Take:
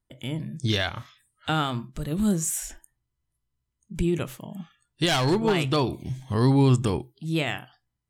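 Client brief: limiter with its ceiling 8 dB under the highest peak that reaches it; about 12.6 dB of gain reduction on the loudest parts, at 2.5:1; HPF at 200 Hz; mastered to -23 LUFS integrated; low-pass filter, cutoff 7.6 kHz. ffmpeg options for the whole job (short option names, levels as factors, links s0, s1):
-af "highpass=200,lowpass=7600,acompressor=threshold=0.0126:ratio=2.5,volume=6.68,alimiter=limit=0.316:level=0:latency=1"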